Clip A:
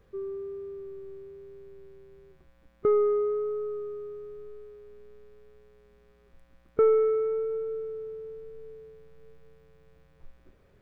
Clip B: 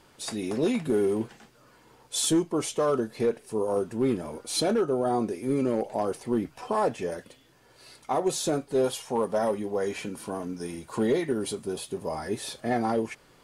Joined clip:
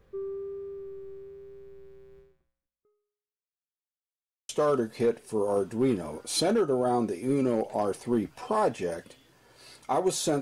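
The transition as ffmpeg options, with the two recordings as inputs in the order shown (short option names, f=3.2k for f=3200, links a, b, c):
-filter_complex "[0:a]apad=whole_dur=10.41,atrim=end=10.41,asplit=2[a][b];[a]atrim=end=3.6,asetpts=PTS-STARTPTS,afade=t=out:st=2.19:d=1.41:c=exp[c];[b]atrim=start=3.6:end=4.49,asetpts=PTS-STARTPTS,volume=0[d];[1:a]atrim=start=2.69:end=8.61,asetpts=PTS-STARTPTS,afade=t=in:d=0.004:c=hsin[e];[c][d][e]concat=n=3:v=0:a=1"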